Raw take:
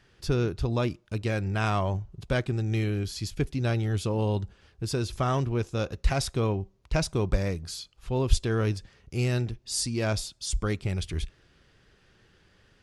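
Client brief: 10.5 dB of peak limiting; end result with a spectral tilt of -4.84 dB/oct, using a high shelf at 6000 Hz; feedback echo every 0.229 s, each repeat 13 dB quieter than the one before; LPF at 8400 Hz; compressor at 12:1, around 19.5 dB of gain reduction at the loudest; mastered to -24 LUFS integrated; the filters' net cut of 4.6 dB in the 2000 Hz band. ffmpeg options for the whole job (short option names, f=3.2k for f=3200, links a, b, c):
-af "lowpass=8.4k,equalizer=f=2k:t=o:g=-7.5,highshelf=f=6k:g=8.5,acompressor=threshold=-34dB:ratio=12,alimiter=level_in=9.5dB:limit=-24dB:level=0:latency=1,volume=-9.5dB,aecho=1:1:229|458|687:0.224|0.0493|0.0108,volume=19.5dB"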